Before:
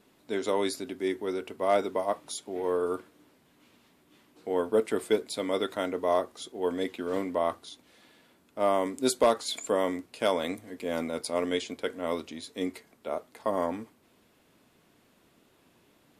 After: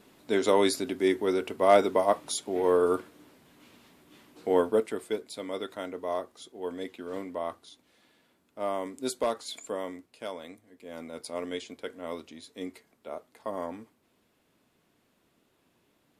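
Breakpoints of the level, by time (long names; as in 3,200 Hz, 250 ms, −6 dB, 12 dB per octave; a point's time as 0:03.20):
0:04.56 +5 dB
0:04.99 −6 dB
0:09.56 −6 dB
0:10.70 −14.5 dB
0:11.25 −6 dB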